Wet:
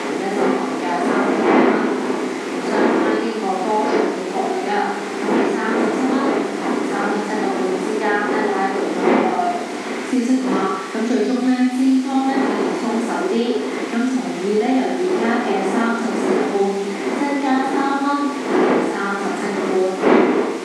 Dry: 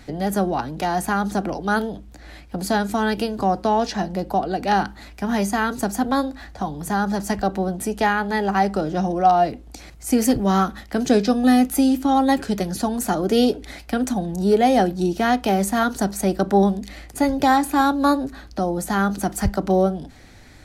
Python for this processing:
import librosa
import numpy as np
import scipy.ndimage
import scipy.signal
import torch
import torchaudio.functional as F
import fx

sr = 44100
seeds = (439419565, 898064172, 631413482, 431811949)

y = fx.dmg_wind(x, sr, seeds[0], corner_hz=570.0, level_db=-17.0)
y = fx.high_shelf(y, sr, hz=6400.0, db=-10.0)
y = fx.rev_schroeder(y, sr, rt60_s=0.75, comb_ms=27, drr_db=-5.0)
y = fx.dmg_noise_colour(y, sr, seeds[1], colour='pink', level_db=-27.0)
y = fx.cabinet(y, sr, low_hz=240.0, low_slope=24, high_hz=8800.0, hz=(260.0, 380.0, 590.0, 2100.0), db=(4, 5, -7, 6))
y = fx.band_squash(y, sr, depth_pct=70)
y = F.gain(torch.from_numpy(y), -8.0).numpy()